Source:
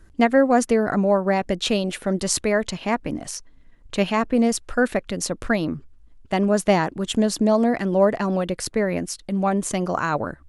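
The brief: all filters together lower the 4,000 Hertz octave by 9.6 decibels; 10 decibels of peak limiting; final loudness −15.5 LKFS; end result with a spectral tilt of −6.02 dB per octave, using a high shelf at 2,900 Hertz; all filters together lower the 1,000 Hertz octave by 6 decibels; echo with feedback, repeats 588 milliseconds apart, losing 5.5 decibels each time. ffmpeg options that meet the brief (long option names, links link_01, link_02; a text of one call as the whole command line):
ffmpeg -i in.wav -af "equalizer=frequency=1000:width_type=o:gain=-8,highshelf=frequency=2900:gain=-6.5,equalizer=frequency=4000:width_type=o:gain=-7,alimiter=limit=-16.5dB:level=0:latency=1,aecho=1:1:588|1176|1764|2352|2940|3528|4116:0.531|0.281|0.149|0.079|0.0419|0.0222|0.0118,volume=10.5dB" out.wav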